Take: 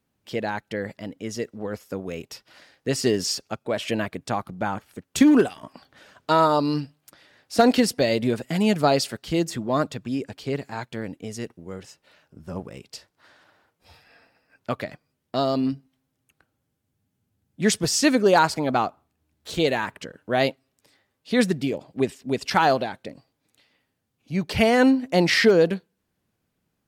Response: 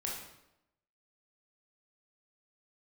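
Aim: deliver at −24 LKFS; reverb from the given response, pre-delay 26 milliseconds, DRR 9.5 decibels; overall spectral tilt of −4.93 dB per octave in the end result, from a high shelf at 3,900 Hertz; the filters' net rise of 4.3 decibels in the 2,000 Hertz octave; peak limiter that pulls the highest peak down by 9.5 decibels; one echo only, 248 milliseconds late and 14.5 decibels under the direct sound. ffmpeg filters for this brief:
-filter_complex "[0:a]equalizer=frequency=2000:width_type=o:gain=6.5,highshelf=frequency=3900:gain=-5.5,alimiter=limit=-11.5dB:level=0:latency=1,aecho=1:1:248:0.188,asplit=2[link_01][link_02];[1:a]atrim=start_sample=2205,adelay=26[link_03];[link_02][link_03]afir=irnorm=-1:irlink=0,volume=-11.5dB[link_04];[link_01][link_04]amix=inputs=2:normalize=0,volume=0.5dB"

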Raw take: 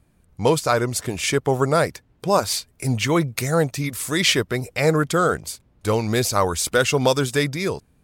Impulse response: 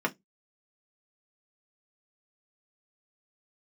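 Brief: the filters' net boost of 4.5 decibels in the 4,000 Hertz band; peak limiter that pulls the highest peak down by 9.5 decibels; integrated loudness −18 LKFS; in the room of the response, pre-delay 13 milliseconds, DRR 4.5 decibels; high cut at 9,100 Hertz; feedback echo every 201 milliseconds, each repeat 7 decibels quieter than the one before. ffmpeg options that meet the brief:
-filter_complex "[0:a]lowpass=9100,equalizer=frequency=4000:width_type=o:gain=6,alimiter=limit=-12dB:level=0:latency=1,aecho=1:1:201|402|603|804|1005:0.447|0.201|0.0905|0.0407|0.0183,asplit=2[link_01][link_02];[1:a]atrim=start_sample=2205,adelay=13[link_03];[link_02][link_03]afir=irnorm=-1:irlink=0,volume=-14dB[link_04];[link_01][link_04]amix=inputs=2:normalize=0,volume=3dB"

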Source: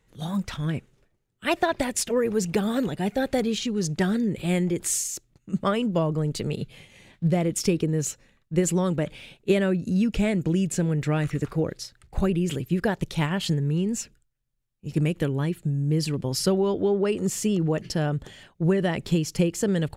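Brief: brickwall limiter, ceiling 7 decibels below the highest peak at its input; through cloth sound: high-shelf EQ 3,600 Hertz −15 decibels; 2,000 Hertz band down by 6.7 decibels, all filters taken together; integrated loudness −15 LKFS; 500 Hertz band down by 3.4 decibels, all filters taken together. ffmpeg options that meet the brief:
ffmpeg -i in.wav -af "equalizer=frequency=500:width_type=o:gain=-4,equalizer=frequency=2000:width_type=o:gain=-4,alimiter=limit=-17dB:level=0:latency=1,highshelf=frequency=3600:gain=-15,volume=13.5dB" out.wav

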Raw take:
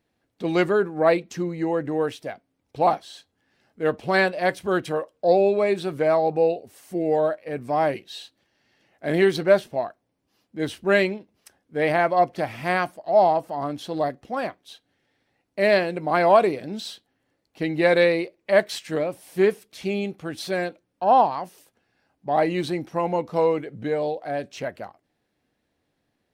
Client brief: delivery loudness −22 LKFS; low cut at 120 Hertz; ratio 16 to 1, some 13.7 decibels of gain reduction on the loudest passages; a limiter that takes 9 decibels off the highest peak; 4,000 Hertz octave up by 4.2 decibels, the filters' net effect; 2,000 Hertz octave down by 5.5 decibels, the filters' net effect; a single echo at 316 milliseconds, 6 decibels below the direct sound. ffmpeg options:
ffmpeg -i in.wav -af "highpass=120,equalizer=frequency=2000:width_type=o:gain=-8.5,equalizer=frequency=4000:width_type=o:gain=7,acompressor=threshold=-26dB:ratio=16,alimiter=level_in=1.5dB:limit=-24dB:level=0:latency=1,volume=-1.5dB,aecho=1:1:316:0.501,volume=13dB" out.wav

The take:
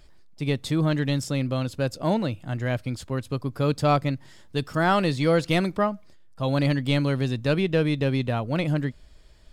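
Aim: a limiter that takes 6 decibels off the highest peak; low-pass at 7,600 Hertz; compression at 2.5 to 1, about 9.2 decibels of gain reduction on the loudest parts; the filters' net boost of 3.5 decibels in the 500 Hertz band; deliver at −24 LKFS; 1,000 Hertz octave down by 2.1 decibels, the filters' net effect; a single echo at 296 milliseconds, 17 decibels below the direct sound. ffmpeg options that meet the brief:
ffmpeg -i in.wav -af "lowpass=7600,equalizer=frequency=500:width_type=o:gain=5.5,equalizer=frequency=1000:width_type=o:gain=-5.5,acompressor=threshold=-28dB:ratio=2.5,alimiter=limit=-22dB:level=0:latency=1,aecho=1:1:296:0.141,volume=8dB" out.wav

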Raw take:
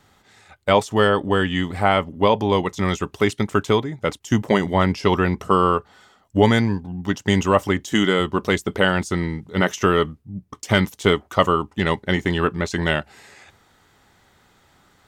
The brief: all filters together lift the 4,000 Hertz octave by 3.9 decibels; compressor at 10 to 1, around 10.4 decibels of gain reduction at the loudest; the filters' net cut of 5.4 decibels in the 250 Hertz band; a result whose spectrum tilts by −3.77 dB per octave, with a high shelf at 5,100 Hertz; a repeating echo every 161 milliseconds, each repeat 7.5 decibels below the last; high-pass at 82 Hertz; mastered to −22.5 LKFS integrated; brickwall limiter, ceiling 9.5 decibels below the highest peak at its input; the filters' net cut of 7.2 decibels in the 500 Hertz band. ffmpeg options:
ffmpeg -i in.wav -af "highpass=82,equalizer=frequency=250:width_type=o:gain=-5.5,equalizer=frequency=500:width_type=o:gain=-7.5,equalizer=frequency=4000:width_type=o:gain=3.5,highshelf=frequency=5100:gain=6,acompressor=threshold=-24dB:ratio=10,alimiter=limit=-16.5dB:level=0:latency=1,aecho=1:1:161|322|483|644|805:0.422|0.177|0.0744|0.0312|0.0131,volume=8.5dB" out.wav

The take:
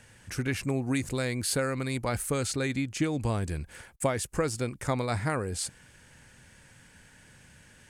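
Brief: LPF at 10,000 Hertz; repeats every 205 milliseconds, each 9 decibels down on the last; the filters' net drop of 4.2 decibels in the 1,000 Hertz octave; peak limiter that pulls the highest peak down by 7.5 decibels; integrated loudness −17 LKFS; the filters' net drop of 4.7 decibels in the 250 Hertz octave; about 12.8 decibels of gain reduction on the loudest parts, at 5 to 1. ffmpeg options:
ffmpeg -i in.wav -af "lowpass=10000,equalizer=frequency=250:width_type=o:gain=-5.5,equalizer=frequency=1000:width_type=o:gain=-5.5,acompressor=threshold=-41dB:ratio=5,alimiter=level_in=11.5dB:limit=-24dB:level=0:latency=1,volume=-11.5dB,aecho=1:1:205|410|615|820:0.355|0.124|0.0435|0.0152,volume=29dB" out.wav

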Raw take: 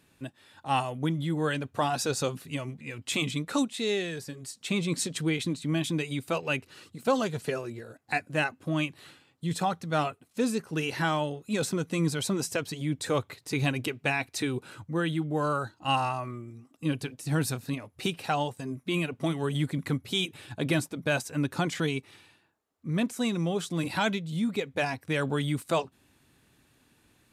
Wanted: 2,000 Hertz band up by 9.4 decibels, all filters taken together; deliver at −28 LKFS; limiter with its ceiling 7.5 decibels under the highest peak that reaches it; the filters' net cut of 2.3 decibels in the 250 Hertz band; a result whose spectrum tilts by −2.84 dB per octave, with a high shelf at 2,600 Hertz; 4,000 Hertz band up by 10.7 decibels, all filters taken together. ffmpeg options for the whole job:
ffmpeg -i in.wav -af "equalizer=frequency=250:width_type=o:gain=-3.5,equalizer=frequency=2000:width_type=o:gain=7,highshelf=frequency=2600:gain=8,equalizer=frequency=4000:width_type=o:gain=4.5,volume=-1dB,alimiter=limit=-15dB:level=0:latency=1" out.wav

